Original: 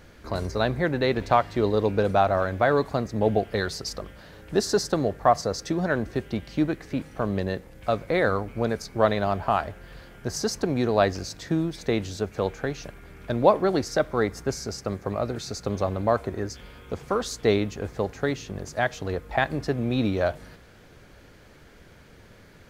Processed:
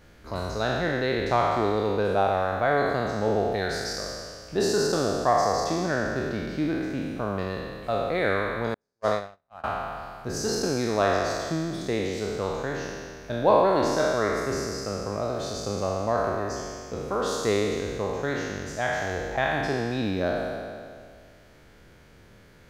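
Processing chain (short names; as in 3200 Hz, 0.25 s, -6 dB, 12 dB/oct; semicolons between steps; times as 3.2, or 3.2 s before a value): spectral trails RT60 2.09 s; 8.74–9.64 gate -15 dBFS, range -51 dB; gain -5.5 dB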